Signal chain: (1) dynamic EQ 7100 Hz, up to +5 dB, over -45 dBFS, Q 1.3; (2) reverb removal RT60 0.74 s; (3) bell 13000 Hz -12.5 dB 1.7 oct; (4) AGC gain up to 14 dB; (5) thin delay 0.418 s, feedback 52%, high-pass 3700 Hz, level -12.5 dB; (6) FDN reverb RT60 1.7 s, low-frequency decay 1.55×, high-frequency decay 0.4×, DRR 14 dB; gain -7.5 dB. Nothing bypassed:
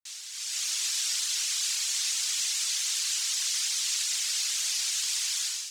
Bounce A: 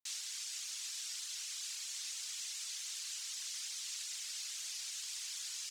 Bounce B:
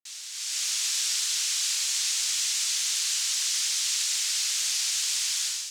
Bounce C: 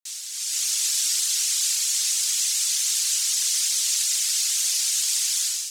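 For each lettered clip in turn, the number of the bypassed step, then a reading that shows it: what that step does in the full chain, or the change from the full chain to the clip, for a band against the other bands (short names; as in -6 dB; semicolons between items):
4, momentary loudness spread change -2 LU; 2, loudness change +2.0 LU; 3, loudness change +6.0 LU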